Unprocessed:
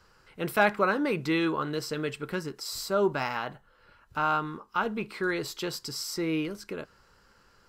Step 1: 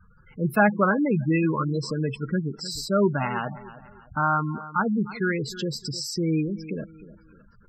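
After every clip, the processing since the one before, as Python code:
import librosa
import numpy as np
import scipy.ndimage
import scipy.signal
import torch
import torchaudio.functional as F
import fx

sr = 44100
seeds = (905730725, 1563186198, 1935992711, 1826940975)

y = fx.low_shelf_res(x, sr, hz=270.0, db=6.0, q=1.5)
y = fx.echo_feedback(y, sr, ms=307, feedback_pct=35, wet_db=-16.0)
y = fx.spec_gate(y, sr, threshold_db=-15, keep='strong')
y = y * 10.0 ** (4.0 / 20.0)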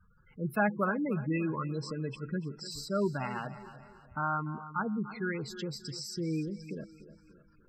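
y = fx.echo_feedback(x, sr, ms=293, feedback_pct=46, wet_db=-16.5)
y = y * 10.0 ** (-9.0 / 20.0)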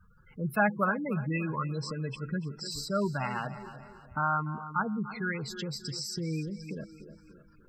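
y = fx.dynamic_eq(x, sr, hz=330.0, q=1.3, threshold_db=-46.0, ratio=4.0, max_db=-8)
y = y * 10.0 ** (4.0 / 20.0)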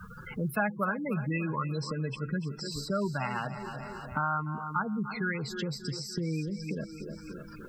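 y = fx.band_squash(x, sr, depth_pct=70)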